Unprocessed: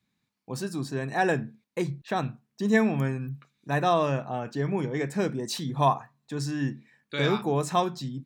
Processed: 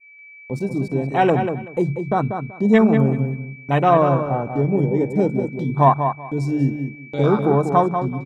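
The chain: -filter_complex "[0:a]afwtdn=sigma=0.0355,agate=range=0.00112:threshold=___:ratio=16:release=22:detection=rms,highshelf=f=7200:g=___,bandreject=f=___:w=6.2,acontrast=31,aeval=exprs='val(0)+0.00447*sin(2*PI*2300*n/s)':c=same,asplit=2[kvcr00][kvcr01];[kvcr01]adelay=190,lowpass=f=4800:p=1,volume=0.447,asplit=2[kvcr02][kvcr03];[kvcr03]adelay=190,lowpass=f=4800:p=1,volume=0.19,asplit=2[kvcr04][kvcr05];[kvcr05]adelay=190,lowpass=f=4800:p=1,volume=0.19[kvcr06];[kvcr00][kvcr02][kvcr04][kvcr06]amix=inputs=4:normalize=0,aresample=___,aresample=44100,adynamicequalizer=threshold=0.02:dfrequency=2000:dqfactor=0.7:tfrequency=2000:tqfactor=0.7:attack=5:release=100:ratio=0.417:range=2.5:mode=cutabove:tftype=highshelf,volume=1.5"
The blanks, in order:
0.00562, 3, 1700, 32000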